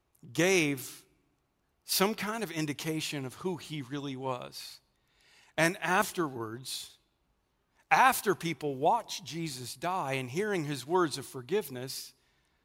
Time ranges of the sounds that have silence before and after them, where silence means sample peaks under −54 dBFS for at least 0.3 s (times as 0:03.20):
0:01.86–0:04.78
0:05.21–0:06.95
0:07.81–0:12.12